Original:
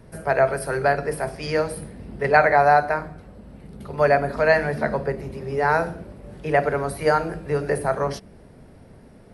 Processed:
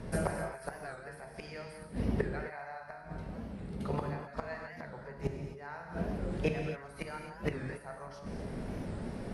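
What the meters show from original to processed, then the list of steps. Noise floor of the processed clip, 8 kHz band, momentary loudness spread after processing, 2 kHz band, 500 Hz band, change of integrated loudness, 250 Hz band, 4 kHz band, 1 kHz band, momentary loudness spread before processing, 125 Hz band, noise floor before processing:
-49 dBFS, no reading, 11 LU, -19.5 dB, -18.5 dB, -17.5 dB, -7.0 dB, -13.5 dB, -22.0 dB, 18 LU, -8.5 dB, -48 dBFS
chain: low-pass 9.2 kHz 12 dB/octave; dynamic bell 390 Hz, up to -7 dB, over -31 dBFS, Q 0.79; gain riding within 4 dB 0.5 s; inverted gate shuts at -21 dBFS, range -26 dB; on a send: feedback echo behind a high-pass 394 ms, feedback 67%, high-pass 5.1 kHz, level -19.5 dB; on the sum: gated-style reverb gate 290 ms flat, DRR 2 dB; warped record 45 rpm, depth 160 cents; trim +2.5 dB

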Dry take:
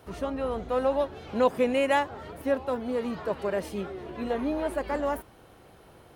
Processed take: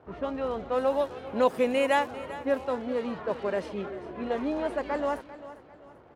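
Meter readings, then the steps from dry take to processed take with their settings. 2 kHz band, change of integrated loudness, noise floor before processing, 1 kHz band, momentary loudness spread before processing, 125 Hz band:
0.0 dB, -0.5 dB, -54 dBFS, 0.0 dB, 11 LU, -4.0 dB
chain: crackle 380 per s -43 dBFS; bass shelf 110 Hz -9 dB; bit crusher 11-bit; level-controlled noise filter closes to 1.2 kHz, open at -21.5 dBFS; feedback delay 395 ms, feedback 38%, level -15.5 dB

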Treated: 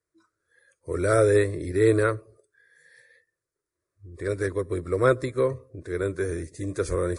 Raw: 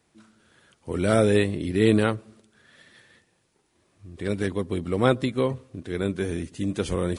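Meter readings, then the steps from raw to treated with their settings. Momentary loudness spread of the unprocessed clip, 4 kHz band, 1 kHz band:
14 LU, -9.5 dB, -0.5 dB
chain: spectral noise reduction 18 dB; spectral replace 2.64–2.94 s, 260–5800 Hz both; static phaser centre 810 Hz, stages 6; trim +2.5 dB

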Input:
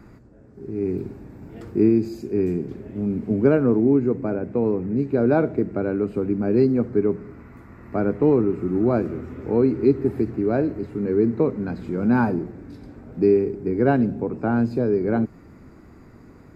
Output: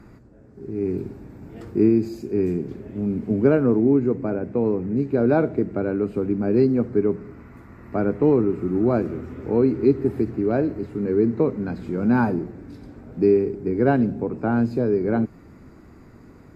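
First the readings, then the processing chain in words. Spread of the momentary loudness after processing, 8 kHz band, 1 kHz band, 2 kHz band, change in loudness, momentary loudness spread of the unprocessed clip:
12 LU, no reading, 0.0 dB, 0.0 dB, 0.0 dB, 12 LU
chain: AAC 64 kbps 32 kHz

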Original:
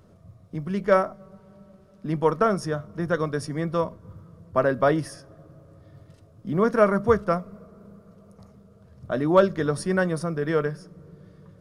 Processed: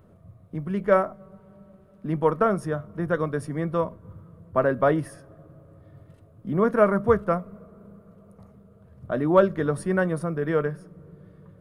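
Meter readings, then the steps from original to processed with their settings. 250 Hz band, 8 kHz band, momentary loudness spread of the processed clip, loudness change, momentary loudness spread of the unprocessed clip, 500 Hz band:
0.0 dB, no reading, 13 LU, 0.0 dB, 13 LU, 0.0 dB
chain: peaking EQ 5.4 kHz -13.5 dB 1.1 oct

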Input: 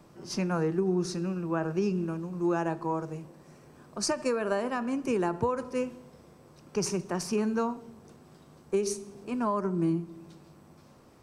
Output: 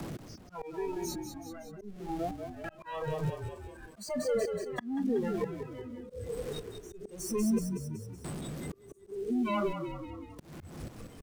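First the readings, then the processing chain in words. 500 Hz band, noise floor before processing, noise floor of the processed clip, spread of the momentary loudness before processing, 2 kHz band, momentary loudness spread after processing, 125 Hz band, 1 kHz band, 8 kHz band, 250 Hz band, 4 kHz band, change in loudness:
-4.5 dB, -56 dBFS, -55 dBFS, 10 LU, -6.0 dB, 15 LU, -4.5 dB, -6.5 dB, -6.0 dB, -4.5 dB, -6.5 dB, -5.5 dB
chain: one-bit comparator; spectral noise reduction 24 dB; bass shelf 420 Hz +8 dB; in parallel at +1.5 dB: compression, threshold -40 dBFS, peak gain reduction 13 dB; on the sum: trance gate "x..xxxx....xx" 91 bpm -24 dB; rotary cabinet horn 1.2 Hz; on a send: frequency-shifting echo 187 ms, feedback 45%, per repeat -36 Hz, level -9.5 dB; on the sum: slow attack 498 ms; three bands compressed up and down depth 40%; trim +4.5 dB

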